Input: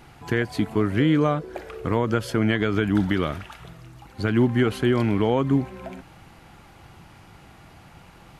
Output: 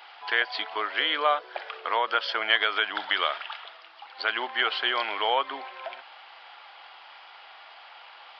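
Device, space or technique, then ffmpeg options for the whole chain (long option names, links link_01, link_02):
musical greeting card: -af "aresample=11025,aresample=44100,highpass=frequency=690:width=0.5412,highpass=frequency=690:width=1.3066,equalizer=frequency=3200:width_type=o:width=0.29:gain=7,volume=4.5dB"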